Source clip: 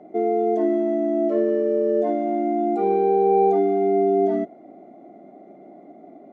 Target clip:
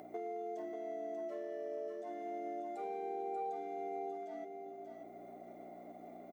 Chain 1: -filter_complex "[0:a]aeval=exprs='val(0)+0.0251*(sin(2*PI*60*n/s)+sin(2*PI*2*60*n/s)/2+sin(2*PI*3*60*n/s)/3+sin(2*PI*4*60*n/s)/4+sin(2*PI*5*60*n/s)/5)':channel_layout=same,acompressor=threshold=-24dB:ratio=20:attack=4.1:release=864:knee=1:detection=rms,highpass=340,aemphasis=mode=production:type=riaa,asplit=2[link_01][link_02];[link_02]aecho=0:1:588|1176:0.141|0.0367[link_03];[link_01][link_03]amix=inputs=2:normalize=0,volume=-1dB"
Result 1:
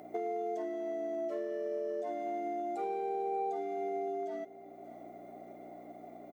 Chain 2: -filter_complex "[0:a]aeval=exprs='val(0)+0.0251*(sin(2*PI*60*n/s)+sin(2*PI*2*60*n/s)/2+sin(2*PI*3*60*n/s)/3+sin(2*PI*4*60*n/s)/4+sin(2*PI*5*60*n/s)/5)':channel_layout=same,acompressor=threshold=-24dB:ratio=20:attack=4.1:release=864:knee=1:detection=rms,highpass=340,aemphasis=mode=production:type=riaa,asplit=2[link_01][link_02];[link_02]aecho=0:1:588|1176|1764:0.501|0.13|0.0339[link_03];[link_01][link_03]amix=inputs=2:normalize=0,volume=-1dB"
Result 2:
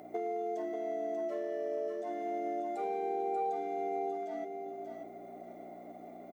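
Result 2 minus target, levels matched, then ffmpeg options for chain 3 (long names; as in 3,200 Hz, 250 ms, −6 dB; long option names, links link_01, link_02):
downward compressor: peak gain reduction −6 dB
-filter_complex "[0:a]aeval=exprs='val(0)+0.0251*(sin(2*PI*60*n/s)+sin(2*PI*2*60*n/s)/2+sin(2*PI*3*60*n/s)/3+sin(2*PI*4*60*n/s)/4+sin(2*PI*5*60*n/s)/5)':channel_layout=same,acompressor=threshold=-30.5dB:ratio=20:attack=4.1:release=864:knee=1:detection=rms,highpass=340,aemphasis=mode=production:type=riaa,asplit=2[link_01][link_02];[link_02]aecho=0:1:588|1176|1764:0.501|0.13|0.0339[link_03];[link_01][link_03]amix=inputs=2:normalize=0,volume=-1dB"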